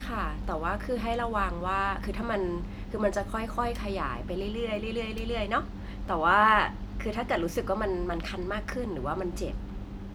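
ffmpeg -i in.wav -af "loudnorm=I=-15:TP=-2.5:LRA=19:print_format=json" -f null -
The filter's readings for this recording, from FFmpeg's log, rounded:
"input_i" : "-30.3",
"input_tp" : "-8.5",
"input_lra" : "5.0",
"input_thresh" : "-40.4",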